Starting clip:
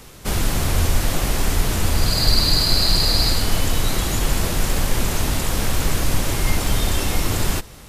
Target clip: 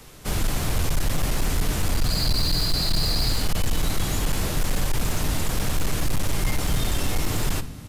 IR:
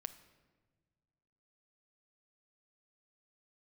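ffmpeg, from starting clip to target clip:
-filter_complex "[0:a]acrossover=split=250[link_01][link_02];[link_01]asplit=7[link_03][link_04][link_05][link_06][link_07][link_08][link_09];[link_04]adelay=169,afreqshift=43,volume=-16dB[link_10];[link_05]adelay=338,afreqshift=86,volume=-20.2dB[link_11];[link_06]adelay=507,afreqshift=129,volume=-24.3dB[link_12];[link_07]adelay=676,afreqshift=172,volume=-28.5dB[link_13];[link_08]adelay=845,afreqshift=215,volume=-32.6dB[link_14];[link_09]adelay=1014,afreqshift=258,volume=-36.8dB[link_15];[link_03][link_10][link_11][link_12][link_13][link_14][link_15]amix=inputs=7:normalize=0[link_16];[link_02]asoftclip=type=tanh:threshold=-18dB[link_17];[link_16][link_17]amix=inputs=2:normalize=0[link_18];[1:a]atrim=start_sample=2205,afade=type=out:start_time=0.18:duration=0.01,atrim=end_sample=8379[link_19];[link_18][link_19]afir=irnorm=-1:irlink=0,asoftclip=type=hard:threshold=-16dB"

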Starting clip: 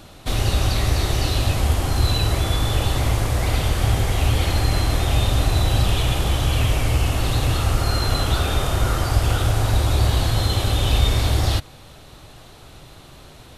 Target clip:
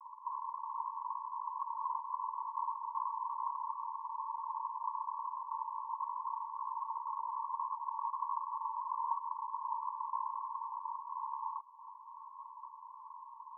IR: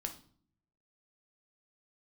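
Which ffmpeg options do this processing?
-af "acompressor=threshold=-31dB:ratio=4,aeval=exprs='0.112*(cos(1*acos(clip(val(0)/0.112,-1,1)))-cos(1*PI/2))+0.0141*(cos(3*acos(clip(val(0)/0.112,-1,1)))-cos(3*PI/2))+0.0355*(cos(4*acos(clip(val(0)/0.112,-1,1)))-cos(4*PI/2))+0.00891*(cos(6*acos(clip(val(0)/0.112,-1,1)))-cos(6*PI/2))+0.00447*(cos(7*acos(clip(val(0)/0.112,-1,1)))-cos(7*PI/2))':channel_layout=same,asoftclip=type=tanh:threshold=-24.5dB,asuperpass=centerf=1000:order=20:qfactor=4.1,volume=17dB"

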